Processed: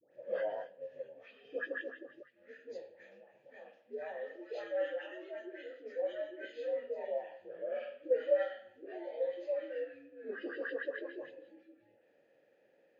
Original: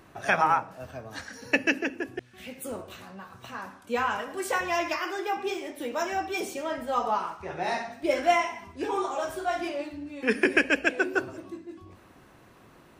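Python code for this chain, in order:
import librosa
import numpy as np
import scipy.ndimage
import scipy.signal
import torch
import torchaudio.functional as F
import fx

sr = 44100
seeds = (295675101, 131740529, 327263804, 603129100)

y = fx.partial_stretch(x, sr, pct=81)
y = fx.vowel_filter(y, sr, vowel='e')
y = fx.dispersion(y, sr, late='highs', ms=123.0, hz=1100.0)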